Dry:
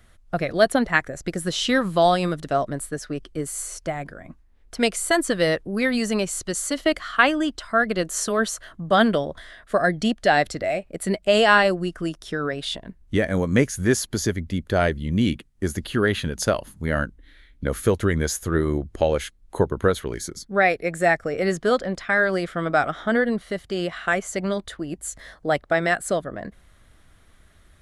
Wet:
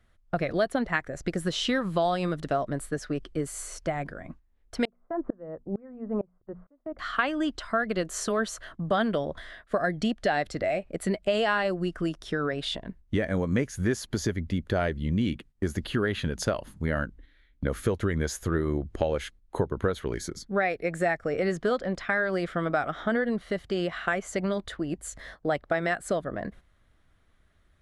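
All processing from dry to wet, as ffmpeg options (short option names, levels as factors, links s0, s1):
-filter_complex "[0:a]asettb=1/sr,asplit=3[s0][s1][s2];[s0]atrim=end=4.854[s3];[s1]atrim=start=4.85:end=6.99,asetpts=PTS-STARTPTS,afade=t=in:d=0.004:c=qsin,afade=t=out:st=2.136:d=0.004:c=qsin,lowpass=f=1100:w=0.5412,lowpass=f=1100:w=1.3066,bandreject=f=60:t=h:w=6,bandreject=f=120:t=h:w=6,bandreject=f=180:t=h:w=6,bandreject=f=240:t=h:w=6,aeval=exprs='val(0)*pow(10,-30*if(lt(mod(-2.2*n/s,1),2*abs(-2.2)/1000),1-mod(-2.2*n/s,1)/(2*abs(-2.2)/1000),(mod(-2.2*n/s,1)-2*abs(-2.2)/1000)/(1-2*abs(-2.2)/1000))/20)':c=same[s4];[s2]atrim=start=6.986[s5];[s3][s4]acrossfade=d=0.004:c1=hsin:c2=qsin[s6];[s6][s5]acrossfade=d=0.004:c1=qsin:c2=hsin,agate=range=0.316:threshold=0.00562:ratio=16:detection=peak,acompressor=threshold=0.0631:ratio=3,highshelf=f=6400:g=-11"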